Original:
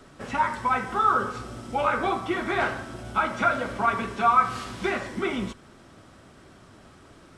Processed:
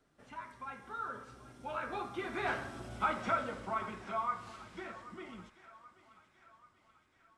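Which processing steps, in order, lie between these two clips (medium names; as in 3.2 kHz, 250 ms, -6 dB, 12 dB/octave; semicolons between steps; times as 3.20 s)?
Doppler pass-by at 2.90 s, 19 m/s, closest 10 m; thinning echo 783 ms, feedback 60%, high-pass 560 Hz, level -16.5 dB; trim -7.5 dB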